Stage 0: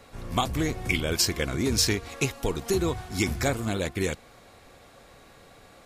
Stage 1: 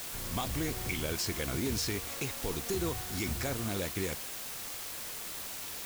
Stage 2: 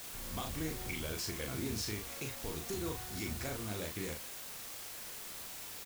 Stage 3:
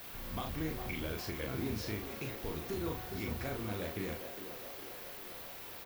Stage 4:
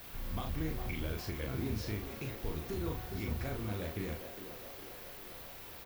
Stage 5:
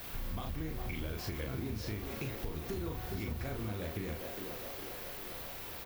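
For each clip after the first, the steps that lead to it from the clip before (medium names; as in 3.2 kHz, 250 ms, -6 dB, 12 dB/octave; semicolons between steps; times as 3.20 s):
peak limiter -19.5 dBFS, peak gain reduction 7.5 dB; word length cut 6-bit, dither triangular; trim -5 dB
doubling 38 ms -4.5 dB; trim -6.5 dB
peaking EQ 7.8 kHz -13.5 dB 1.3 oct; band-passed feedback delay 407 ms, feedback 73%, band-pass 580 Hz, level -7 dB; trim +1.5 dB
bass shelf 120 Hz +9.5 dB; trim -2 dB
compression, threshold -39 dBFS, peak gain reduction 8 dB; trim +4.5 dB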